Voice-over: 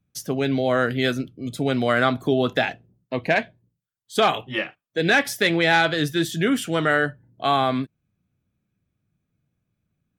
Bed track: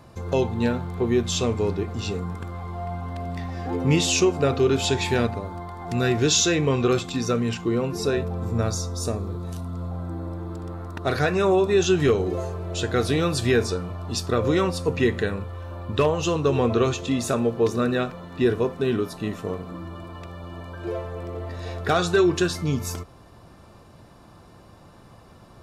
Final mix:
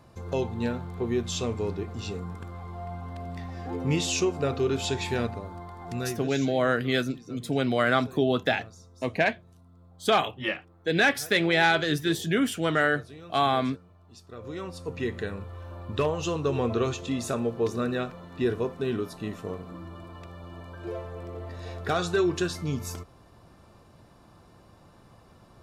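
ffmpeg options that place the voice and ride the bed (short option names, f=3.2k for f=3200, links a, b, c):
-filter_complex "[0:a]adelay=5900,volume=-3.5dB[a];[1:a]volume=12dB,afade=t=out:st=5.88:d=0.43:silence=0.133352,afade=t=in:st=14.27:d=1.32:silence=0.125893[b];[a][b]amix=inputs=2:normalize=0"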